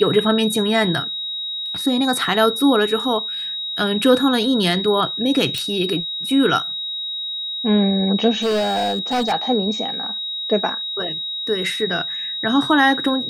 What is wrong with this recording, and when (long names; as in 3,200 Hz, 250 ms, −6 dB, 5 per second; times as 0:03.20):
whistle 3,800 Hz −24 dBFS
0:05.58: click −10 dBFS
0:08.42–0:09.33: clipping −16.5 dBFS